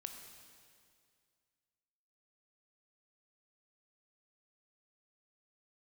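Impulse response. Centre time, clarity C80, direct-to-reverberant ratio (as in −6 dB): 46 ms, 6.5 dB, 4.5 dB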